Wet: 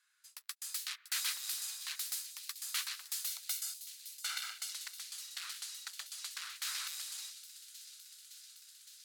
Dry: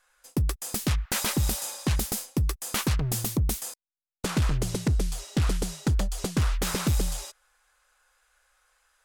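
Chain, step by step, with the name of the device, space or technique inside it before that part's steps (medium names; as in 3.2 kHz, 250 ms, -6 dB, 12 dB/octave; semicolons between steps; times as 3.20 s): 3.27–4.73 s: comb 1.4 ms, depth 96%; headphones lying on a table (high-pass 1.4 kHz 24 dB/octave; peaking EQ 4.2 kHz +6 dB 0.44 oct); feedback echo behind a high-pass 563 ms, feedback 80%, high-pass 3.6 kHz, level -12 dB; trim -8 dB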